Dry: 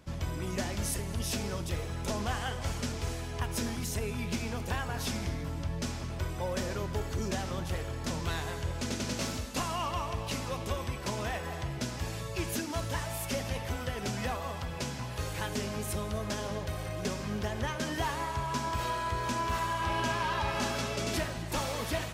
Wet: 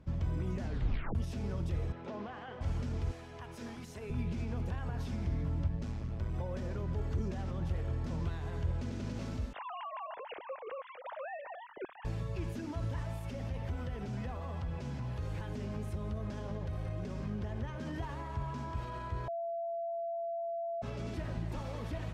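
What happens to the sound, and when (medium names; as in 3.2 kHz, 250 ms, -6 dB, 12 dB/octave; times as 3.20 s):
0.61 s: tape stop 0.54 s
1.92–2.61 s: band-pass 280–3400 Hz
3.11–4.10 s: high-pass 570 Hz 6 dB/octave
5.68–6.34 s: AM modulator 110 Hz, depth 50%
9.53–12.05 s: formants replaced by sine waves
13.21–17.81 s: compression 4:1, threshold -34 dBFS
19.28–20.82 s: bleep 676 Hz -6.5 dBFS
whole clip: bass shelf 87 Hz -9 dB; peak limiter -29.5 dBFS; RIAA curve playback; trim -6 dB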